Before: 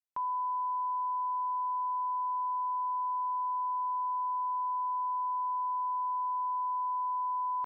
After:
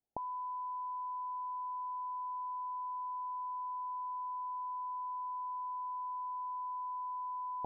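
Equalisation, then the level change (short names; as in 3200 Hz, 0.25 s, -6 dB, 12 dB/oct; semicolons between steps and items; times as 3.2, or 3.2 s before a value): steep low-pass 870 Hz 96 dB/oct; +12.0 dB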